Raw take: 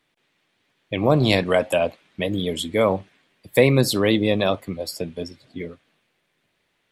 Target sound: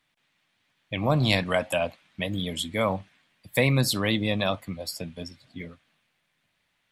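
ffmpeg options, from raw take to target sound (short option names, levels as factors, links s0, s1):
-af "equalizer=f=400:t=o:w=0.94:g=-11,volume=0.794"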